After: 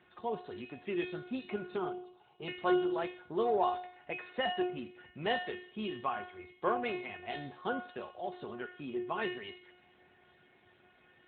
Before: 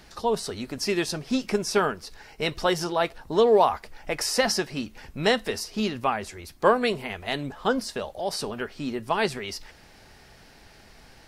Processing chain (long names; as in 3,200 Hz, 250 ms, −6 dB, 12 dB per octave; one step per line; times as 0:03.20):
0:04.22–0:06.04: dynamic equaliser 810 Hz, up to +4 dB, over −36 dBFS, Q 2.2
tuned comb filter 360 Hz, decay 0.52 s, mix 90%
in parallel at −8.5 dB: soft clipping −34 dBFS, distortion −12 dB
0:01.76–0:02.48: on the sum: phaser with its sweep stopped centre 360 Hz, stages 8
on a send at −17 dB: convolution reverb RT60 0.70 s, pre-delay 12 ms
on the sum: level +3.5 dB
AMR narrowband 12.2 kbit/s 8,000 Hz